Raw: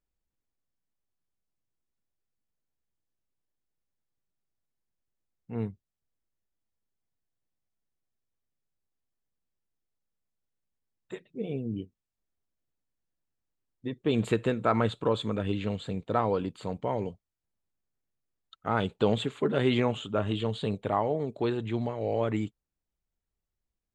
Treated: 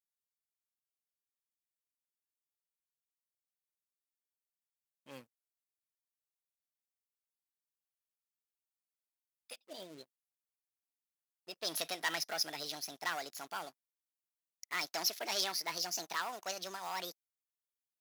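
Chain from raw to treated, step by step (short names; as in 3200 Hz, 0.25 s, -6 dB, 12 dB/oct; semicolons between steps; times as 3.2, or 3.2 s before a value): speed glide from 99% -> 167%; sample leveller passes 2; differentiator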